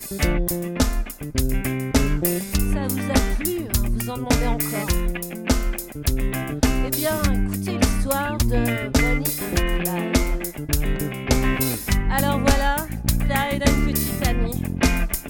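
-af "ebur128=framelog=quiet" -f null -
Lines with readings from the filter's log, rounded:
Integrated loudness:
  I:         -22.6 LUFS
  Threshold: -32.6 LUFS
Loudness range:
  LRA:         2.1 LU
  Threshold: -42.6 LUFS
  LRA low:   -23.7 LUFS
  LRA high:  -21.5 LUFS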